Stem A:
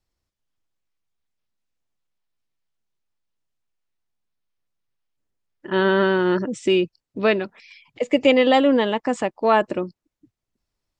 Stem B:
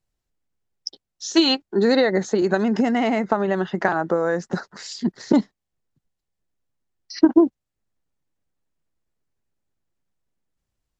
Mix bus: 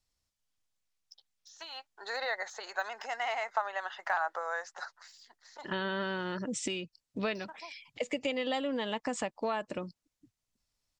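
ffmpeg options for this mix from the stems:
-filter_complex "[0:a]equalizer=f=7000:w=0.44:g=8.5,acompressor=threshold=0.0631:ratio=8,volume=0.562[s0];[1:a]highpass=f=750:w=0.5412,highpass=f=750:w=1.3066,deesser=0.95,adelay=250,volume=0.531,afade=t=in:st=1.76:d=0.33:silence=0.421697,afade=t=out:st=4.76:d=0.34:silence=0.298538[s1];[s0][s1]amix=inputs=2:normalize=0,equalizer=f=360:t=o:w=0.37:g=-7.5"

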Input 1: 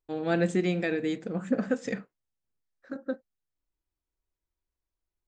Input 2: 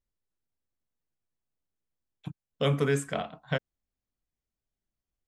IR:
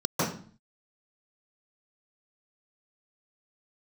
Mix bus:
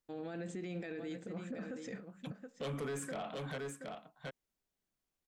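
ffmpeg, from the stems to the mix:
-filter_complex "[0:a]alimiter=limit=0.119:level=0:latency=1:release=111,volume=0.376,asplit=2[s0][s1];[s1]volume=0.251[s2];[1:a]highpass=170,asoftclip=type=tanh:threshold=0.0501,volume=1.33,asplit=2[s3][s4];[s4]volume=0.211[s5];[s2][s5]amix=inputs=2:normalize=0,aecho=0:1:725:1[s6];[s0][s3][s6]amix=inputs=3:normalize=0,alimiter=level_in=3.35:limit=0.0631:level=0:latency=1:release=22,volume=0.299"

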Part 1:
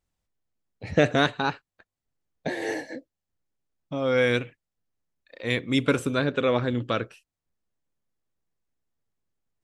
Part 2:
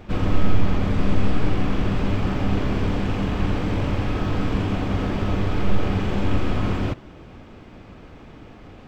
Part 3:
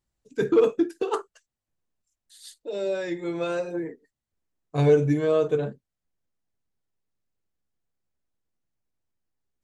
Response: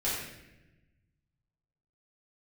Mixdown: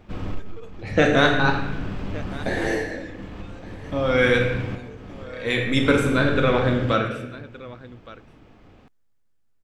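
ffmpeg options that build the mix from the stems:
-filter_complex "[0:a]equalizer=f=1400:t=o:w=0.77:g=3.5,volume=0.794,asplit=3[s0][s1][s2];[s1]volume=0.596[s3];[s2]volume=0.178[s4];[1:a]acontrast=74,volume=0.188[s5];[2:a]acompressor=threshold=0.0355:ratio=1.5,highpass=f=1100:p=1,tremolo=f=1.3:d=0.42,volume=0.355,asplit=2[s6][s7];[s7]apad=whole_len=391599[s8];[s5][s8]sidechaincompress=threshold=0.002:ratio=8:attack=35:release=364[s9];[3:a]atrim=start_sample=2205[s10];[s3][s10]afir=irnorm=-1:irlink=0[s11];[s4]aecho=0:1:1168:1[s12];[s0][s9][s6][s11][s12]amix=inputs=5:normalize=0"

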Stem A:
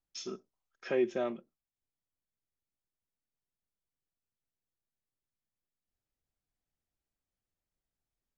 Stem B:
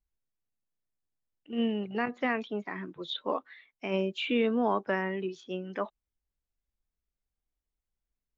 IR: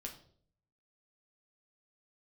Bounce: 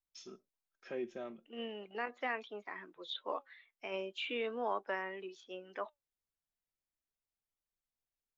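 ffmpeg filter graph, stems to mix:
-filter_complex "[0:a]volume=0.501[s0];[1:a]highpass=450,volume=0.841[s1];[s0][s1]amix=inputs=2:normalize=0,flanger=delay=0.8:depth=3.7:regen=86:speed=0.39:shape=sinusoidal"

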